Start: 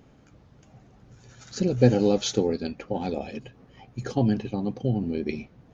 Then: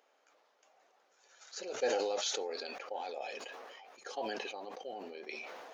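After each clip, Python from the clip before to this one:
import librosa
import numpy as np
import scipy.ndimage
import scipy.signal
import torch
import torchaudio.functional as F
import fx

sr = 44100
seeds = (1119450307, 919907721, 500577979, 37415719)

y = scipy.signal.sosfilt(scipy.signal.butter(4, 540.0, 'highpass', fs=sr, output='sos'), x)
y = fx.sustainer(y, sr, db_per_s=23.0)
y = y * 10.0 ** (-7.5 / 20.0)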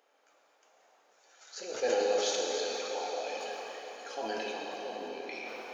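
y = fx.rev_plate(x, sr, seeds[0], rt60_s=4.3, hf_ratio=0.9, predelay_ms=0, drr_db=-1.5)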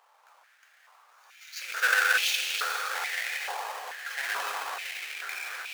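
y = fx.halfwave_hold(x, sr)
y = fx.filter_held_highpass(y, sr, hz=2.3, low_hz=980.0, high_hz=2600.0)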